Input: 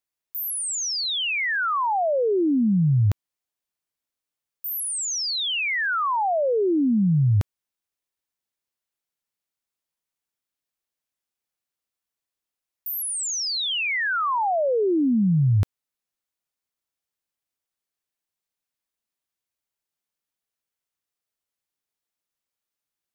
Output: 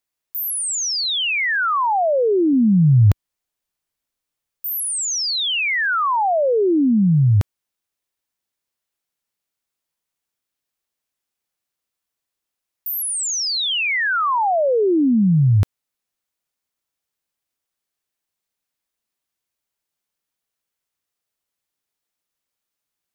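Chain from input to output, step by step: 2.53–4.91 s: bass shelf 70 Hz +9 dB; trim +4.5 dB

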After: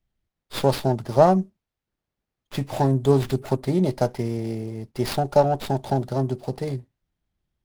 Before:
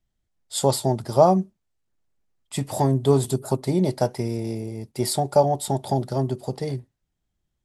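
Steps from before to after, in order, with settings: sliding maximum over 5 samples

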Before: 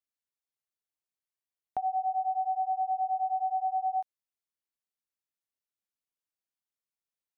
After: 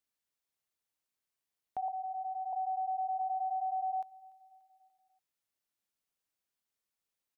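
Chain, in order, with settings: peak limiter -34.5 dBFS, peak gain reduction 10.5 dB; 1.88–2.53 s: Chebyshev band-stop 110–900 Hz, order 2; feedback delay 291 ms, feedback 53%, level -23 dB; 3.21–3.93 s: three bands compressed up and down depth 40%; trim +4 dB

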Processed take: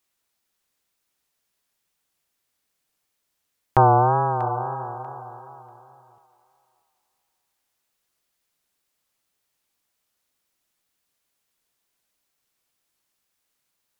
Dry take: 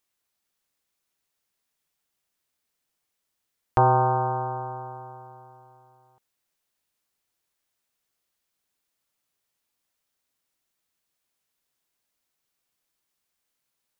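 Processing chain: wow and flutter 100 cents; on a send: thinning echo 640 ms, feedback 21%, high-pass 530 Hz, level -12.5 dB; on the sum: trim +3.5 dB

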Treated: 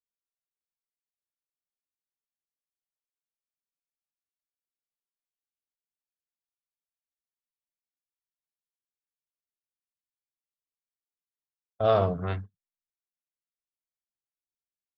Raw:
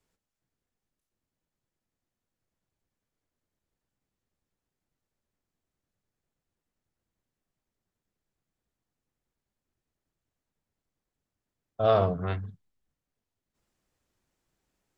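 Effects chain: gate -34 dBFS, range -32 dB

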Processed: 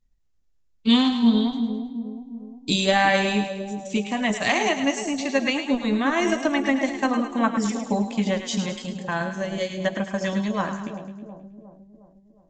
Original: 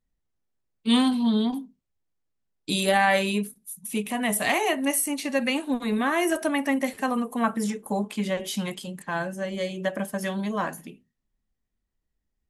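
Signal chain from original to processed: bass shelf 100 Hz +11.5 dB; transient shaper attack +3 dB, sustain -4 dB; treble shelf 5.9 kHz +10.5 dB; two-band feedback delay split 710 Hz, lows 359 ms, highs 106 ms, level -8 dB; Vorbis 96 kbps 16 kHz

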